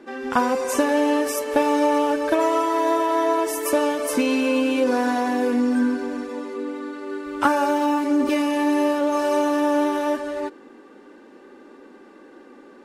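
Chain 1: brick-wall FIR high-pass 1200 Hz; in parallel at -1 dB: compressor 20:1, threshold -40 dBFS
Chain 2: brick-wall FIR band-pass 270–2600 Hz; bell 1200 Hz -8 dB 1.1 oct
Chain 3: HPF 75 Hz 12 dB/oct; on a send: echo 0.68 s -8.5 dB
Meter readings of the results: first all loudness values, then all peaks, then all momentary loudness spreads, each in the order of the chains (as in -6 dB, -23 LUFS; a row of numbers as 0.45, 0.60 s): -30.0, -25.0, -21.0 LUFS; -10.5, -8.0, -6.0 dBFS; 11, 10, 10 LU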